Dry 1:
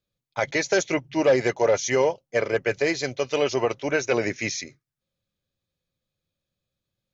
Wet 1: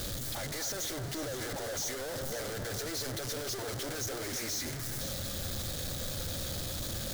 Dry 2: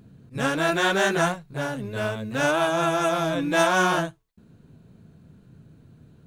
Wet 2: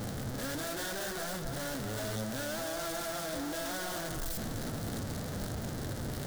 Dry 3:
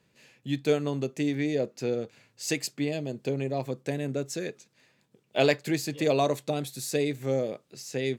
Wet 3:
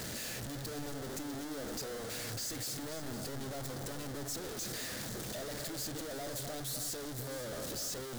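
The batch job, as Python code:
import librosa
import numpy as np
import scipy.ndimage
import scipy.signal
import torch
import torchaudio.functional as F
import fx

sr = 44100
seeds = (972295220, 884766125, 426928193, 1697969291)

y = np.sign(x) * np.sqrt(np.mean(np.square(x)))
y = fx.graphic_eq_15(y, sr, hz=(160, 400, 1000, 2500), db=(-8, -5, -8, -10))
y = fx.echo_alternate(y, sr, ms=256, hz=1800.0, feedback_pct=51, wet_db=-7.0)
y = F.gain(torch.from_numpy(y), -8.0).numpy()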